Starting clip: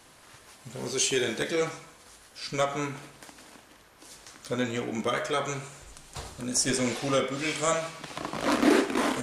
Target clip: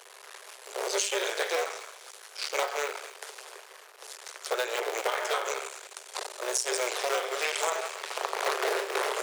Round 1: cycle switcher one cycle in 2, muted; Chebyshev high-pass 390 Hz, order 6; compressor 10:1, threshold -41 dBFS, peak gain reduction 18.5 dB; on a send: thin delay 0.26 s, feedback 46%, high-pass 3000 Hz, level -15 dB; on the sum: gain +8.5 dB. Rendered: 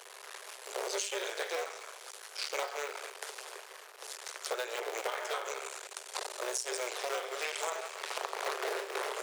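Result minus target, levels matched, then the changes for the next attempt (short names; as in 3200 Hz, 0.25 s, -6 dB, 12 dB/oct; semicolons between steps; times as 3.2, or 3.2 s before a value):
compressor: peak gain reduction +6.5 dB
change: compressor 10:1, threshold -33.5 dBFS, peak gain reduction 12 dB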